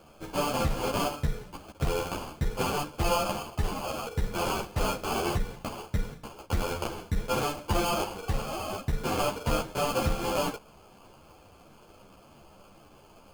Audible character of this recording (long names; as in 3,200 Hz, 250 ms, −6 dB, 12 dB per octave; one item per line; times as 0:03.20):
aliases and images of a low sample rate 1,900 Hz, jitter 0%
a shimmering, thickened sound